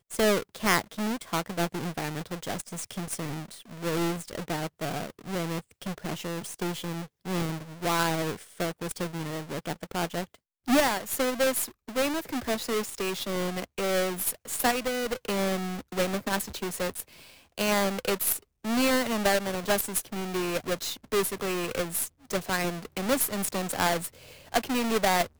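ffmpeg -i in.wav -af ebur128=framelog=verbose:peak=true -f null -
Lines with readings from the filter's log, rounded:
Integrated loudness:
  I:         -29.3 LUFS
  Threshold: -39.4 LUFS
Loudness range:
  LRA:         5.9 LU
  Threshold: -49.7 LUFS
  LRA low:   -33.4 LUFS
  LRA high:  -27.5 LUFS
True peak:
  Peak:       -7.6 dBFS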